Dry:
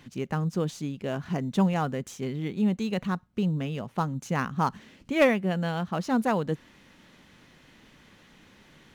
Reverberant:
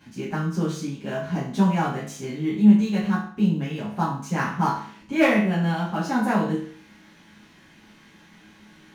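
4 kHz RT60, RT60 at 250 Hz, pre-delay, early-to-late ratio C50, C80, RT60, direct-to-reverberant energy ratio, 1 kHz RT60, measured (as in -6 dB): 0.50 s, 0.50 s, 6 ms, 4.5 dB, 8.5 dB, 0.50 s, -11.0 dB, 0.50 s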